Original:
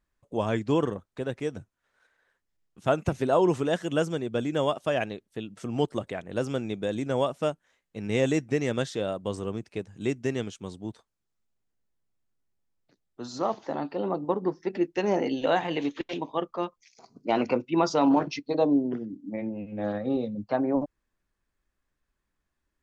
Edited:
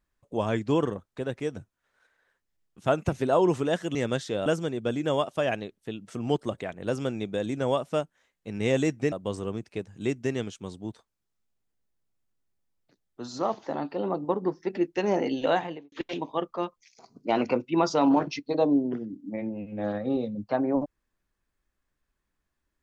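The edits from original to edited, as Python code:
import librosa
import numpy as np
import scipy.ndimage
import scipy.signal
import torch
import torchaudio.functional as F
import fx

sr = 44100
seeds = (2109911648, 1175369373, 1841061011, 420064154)

y = fx.studio_fade_out(x, sr, start_s=15.51, length_s=0.41)
y = fx.edit(y, sr, fx.move(start_s=8.61, length_s=0.51, to_s=3.95), tone=tone)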